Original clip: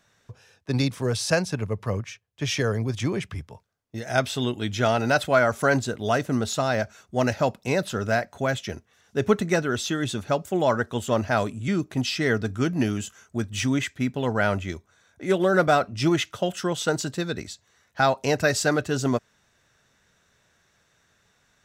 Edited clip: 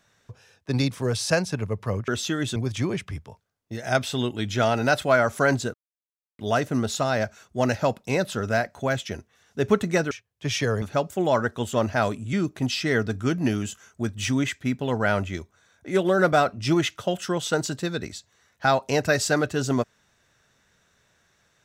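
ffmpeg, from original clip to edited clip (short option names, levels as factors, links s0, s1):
-filter_complex "[0:a]asplit=6[s0][s1][s2][s3][s4][s5];[s0]atrim=end=2.082[s6];[s1]atrim=start=9.688:end=10.172[s7];[s2]atrim=start=2.788:end=5.97,asetpts=PTS-STARTPTS,afade=t=out:st=3.178:d=0.004:c=hsin,apad=pad_dur=0.65[s8];[s3]atrim=start=5.97:end=9.692,asetpts=PTS-STARTPTS,afade=t=in:d=0.004:c=hsin[s9];[s4]atrim=start=2.078:end=2.792[s10];[s5]atrim=start=10.168[s11];[s6][s7]acrossfade=d=0.004:c1=hsin:c2=hsin[s12];[s8][s9]concat=n=2:v=0:a=1[s13];[s12][s13]acrossfade=d=0.004:c1=hsin:c2=hsin[s14];[s14][s10]acrossfade=d=0.004:c1=hsin:c2=hsin[s15];[s15][s11]acrossfade=d=0.004:c1=hsin:c2=hsin"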